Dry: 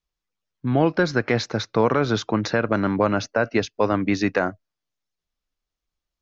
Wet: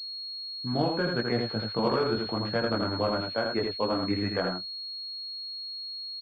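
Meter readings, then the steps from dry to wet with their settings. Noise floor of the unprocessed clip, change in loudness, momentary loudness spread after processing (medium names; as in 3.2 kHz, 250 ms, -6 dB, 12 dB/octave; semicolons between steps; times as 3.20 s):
under -85 dBFS, -7.0 dB, 8 LU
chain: chorus voices 4, 0.68 Hz, delay 20 ms, depth 3.1 ms; delay 82 ms -4 dB; class-D stage that switches slowly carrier 4.3 kHz; trim -5 dB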